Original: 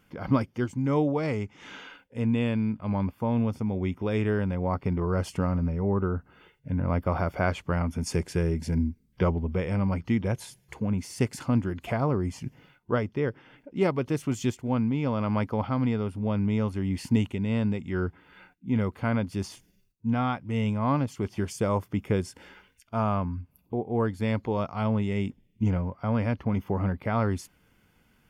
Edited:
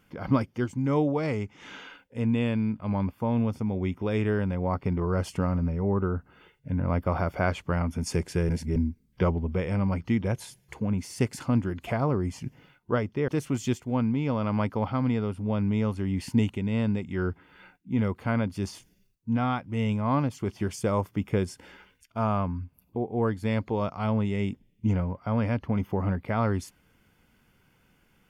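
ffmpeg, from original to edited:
-filter_complex "[0:a]asplit=4[s0][s1][s2][s3];[s0]atrim=end=8.492[s4];[s1]atrim=start=8.488:end=8.762,asetpts=PTS-STARTPTS,areverse[s5];[s2]atrim=start=8.758:end=13.282[s6];[s3]atrim=start=14.048[s7];[s4][s5]acrossfade=d=0.004:c1=hsin:c2=hsin[s8];[s8][s6]acrossfade=d=0.004:c1=hsin:c2=hsin[s9];[s9][s7]acrossfade=d=0.004:c1=hsin:c2=hsin"

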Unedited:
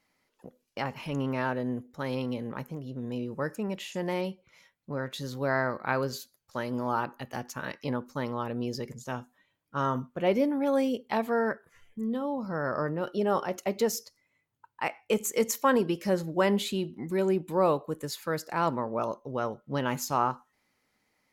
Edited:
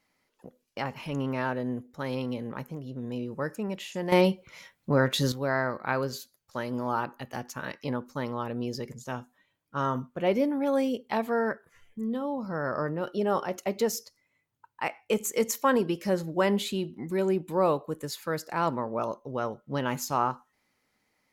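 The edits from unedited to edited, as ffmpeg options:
-filter_complex "[0:a]asplit=3[s0][s1][s2];[s0]atrim=end=4.122[s3];[s1]atrim=start=4.118:end=5.322,asetpts=PTS-STARTPTS,volume=3.35[s4];[s2]atrim=start=5.318[s5];[s3][s4]acrossfade=d=0.004:c1=hsin:c2=hsin[s6];[s6][s5]acrossfade=d=0.004:c1=hsin:c2=hsin"

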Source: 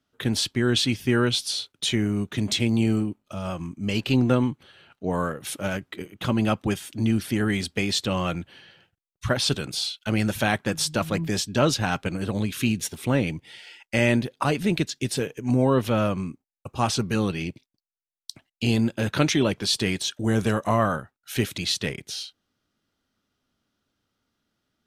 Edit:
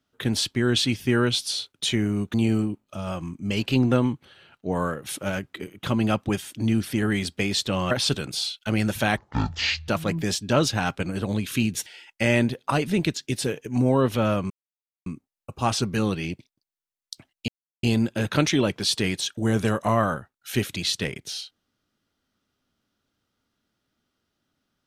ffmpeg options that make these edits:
-filter_complex "[0:a]asplit=8[s0][s1][s2][s3][s4][s5][s6][s7];[s0]atrim=end=2.342[s8];[s1]atrim=start=2.718:end=8.292[s9];[s2]atrim=start=9.308:end=10.574[s10];[s3]atrim=start=10.57:end=10.94,asetpts=PTS-STARTPTS,asetrate=22932,aresample=44100[s11];[s4]atrim=start=10.936:end=12.922[s12];[s5]atrim=start=13.588:end=16.23,asetpts=PTS-STARTPTS,afade=t=out:st=2.638:d=0.004:c=hsin,apad=pad_dur=0.56[s13];[s6]atrim=start=16.23:end=18.65,asetpts=PTS-STARTPTS,afade=t=in:d=0.004:c=hsin,afade=t=out:st=2.416:d=0.004:c=hsin,apad=pad_dur=0.35[s14];[s7]atrim=start=18.65,asetpts=PTS-STARTPTS,afade=t=in:d=0.004:c=hsin[s15];[s8][s9]acrossfade=d=0.004:c1=hsin:c2=hsin[s16];[s16][s10]acrossfade=d=0.004:c1=hsin:c2=hsin[s17];[s17][s11]acrossfade=d=0.004:c1=hsin:c2=hsin[s18];[s18][s12]acrossfade=d=0.004:c1=hsin:c2=hsin[s19];[s13][s14][s15]concat=n=3:v=0:a=1[s20];[s19][s20]acrossfade=d=0.004:c1=hsin:c2=hsin"

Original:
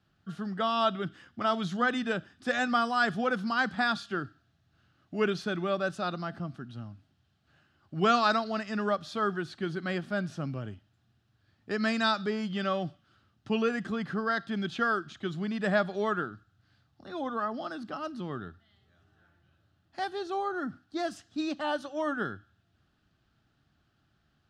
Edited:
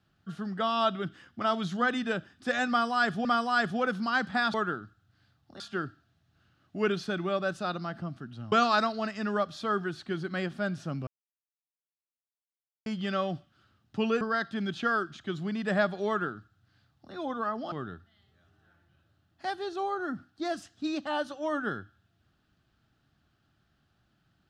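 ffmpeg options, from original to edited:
-filter_complex "[0:a]asplit=9[s0][s1][s2][s3][s4][s5][s6][s7][s8];[s0]atrim=end=3.252[s9];[s1]atrim=start=2.688:end=3.982[s10];[s2]atrim=start=16.038:end=17.102[s11];[s3]atrim=start=3.978:end=6.902[s12];[s4]atrim=start=8.038:end=10.59,asetpts=PTS-STARTPTS,afade=t=out:st=2.548:d=0.004:c=hsin[s13];[s5]atrim=start=10.59:end=12.38,asetpts=PTS-STARTPTS,volume=0[s14];[s6]atrim=start=12.38:end=13.732,asetpts=PTS-STARTPTS,afade=t=in:d=0.004:c=hsin[s15];[s7]atrim=start=14.168:end=17.682[s16];[s8]atrim=start=18.258[s17];[s9][s10]acrossfade=d=0.004:c1=hsin:c2=hsin[s18];[s18][s11]acrossfade=d=0.004:c1=hsin:c2=hsin[s19];[s19][s12]acrossfade=d=0.004:c1=hsin:c2=hsin[s20];[s13][s14][s15]concat=n=3:v=0:a=1[s21];[s20][s21]acrossfade=d=0.004:c1=hsin:c2=hsin[s22];[s22][s16]acrossfade=d=0.004:c1=hsin:c2=hsin[s23];[s23][s17]acrossfade=d=0.004:c1=hsin:c2=hsin"

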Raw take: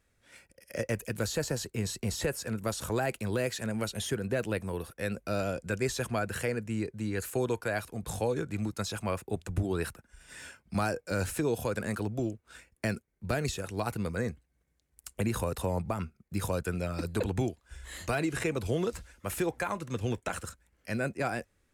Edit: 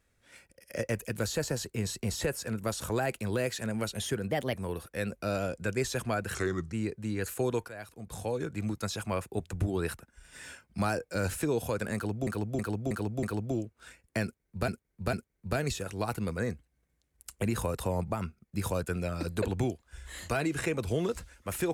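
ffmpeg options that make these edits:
-filter_complex "[0:a]asplit=12[s0][s1][s2][s3][s4][s5][s6][s7][s8][s9][s10][s11];[s0]atrim=end=4.314[s12];[s1]atrim=start=4.31:end=4.58,asetpts=PTS-STARTPTS,asetrate=52920,aresample=44100,atrim=end_sample=9922,asetpts=PTS-STARTPTS[s13];[s2]atrim=start=4.576:end=6.394[s14];[s3]atrim=start=6.39:end=6.69,asetpts=PTS-STARTPTS,asetrate=34398,aresample=44100[s15];[s4]atrim=start=6.686:end=7.65,asetpts=PTS-STARTPTS,afade=t=out:st=0.96:d=0.004:c=hsin:silence=0.199526[s16];[s5]atrim=start=7.65:end=12.232,asetpts=PTS-STARTPTS,afade=t=in:d=0.97:silence=0.199526[s17];[s6]atrim=start=11.908:end=12.232[s18];[s7]atrim=start=11.908:end=12.232[s19];[s8]atrim=start=11.908:end=12.232[s20];[s9]atrim=start=11.908:end=13.362[s21];[s10]atrim=start=12.908:end=13.362[s22];[s11]atrim=start=12.908[s23];[s12][s13]acrossfade=d=0.004:c1=hsin:c2=hsin[s24];[s24][s14]acrossfade=d=0.004:c1=hsin:c2=hsin[s25];[s25][s15]acrossfade=d=0.004:c1=hsin:c2=hsin[s26];[s16][s17]concat=n=2:v=0:a=1[s27];[s26][s27]acrossfade=d=0.004:c1=hsin:c2=hsin[s28];[s28][s18]acrossfade=d=0.004:c1=hsin:c2=hsin[s29];[s29][s19]acrossfade=d=0.004:c1=hsin:c2=hsin[s30];[s30][s20]acrossfade=d=0.004:c1=hsin:c2=hsin[s31];[s31][s21]acrossfade=d=0.004:c1=hsin:c2=hsin[s32];[s32][s22]acrossfade=d=0.004:c1=hsin:c2=hsin[s33];[s33][s23]acrossfade=d=0.004:c1=hsin:c2=hsin"

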